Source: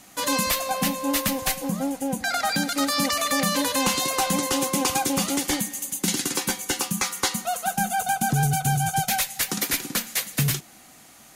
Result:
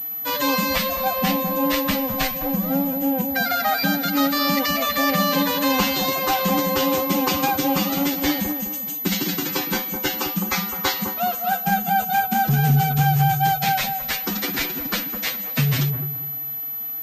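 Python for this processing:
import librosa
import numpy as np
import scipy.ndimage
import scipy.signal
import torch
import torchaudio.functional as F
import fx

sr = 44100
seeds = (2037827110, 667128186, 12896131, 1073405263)

y = fx.echo_wet_lowpass(x, sr, ms=139, feedback_pct=32, hz=1000.0, wet_db=-5.0)
y = fx.stretch_vocoder(y, sr, factor=1.5)
y = fx.pwm(y, sr, carrier_hz=12000.0)
y = y * 10.0 ** (3.0 / 20.0)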